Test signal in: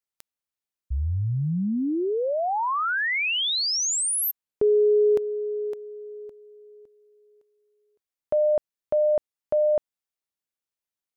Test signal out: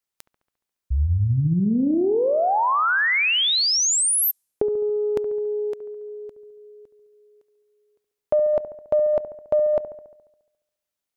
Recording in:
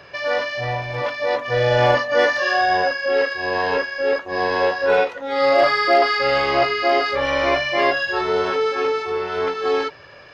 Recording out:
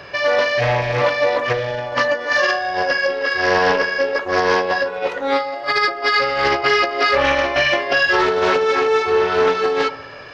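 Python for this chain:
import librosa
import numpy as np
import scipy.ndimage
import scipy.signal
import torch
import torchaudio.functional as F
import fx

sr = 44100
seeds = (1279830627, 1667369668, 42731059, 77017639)

p1 = fx.over_compress(x, sr, threshold_db=-21.0, ratio=-0.5)
p2 = p1 + fx.echo_wet_lowpass(p1, sr, ms=70, feedback_pct=61, hz=1400.0, wet_db=-12, dry=0)
p3 = fx.doppler_dist(p2, sr, depth_ms=0.22)
y = p3 * 10.0 ** (4.0 / 20.0)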